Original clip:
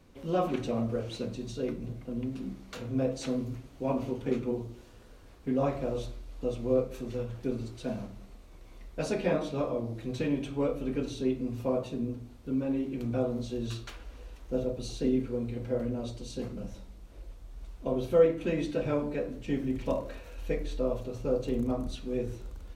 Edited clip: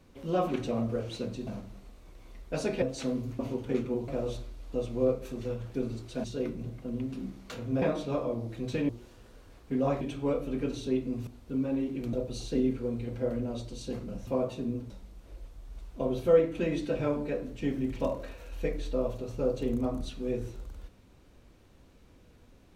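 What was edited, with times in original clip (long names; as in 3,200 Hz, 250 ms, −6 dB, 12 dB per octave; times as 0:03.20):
0:01.47–0:03.05: swap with 0:07.93–0:09.28
0:03.62–0:03.96: remove
0:04.65–0:05.77: move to 0:10.35
0:11.61–0:12.24: move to 0:16.76
0:13.10–0:14.62: remove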